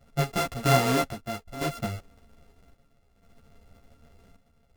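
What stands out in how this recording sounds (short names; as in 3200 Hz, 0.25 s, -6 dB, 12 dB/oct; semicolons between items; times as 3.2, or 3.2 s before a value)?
a buzz of ramps at a fixed pitch in blocks of 64 samples; chopped level 0.62 Hz, depth 60%, duty 70%; a shimmering, thickened sound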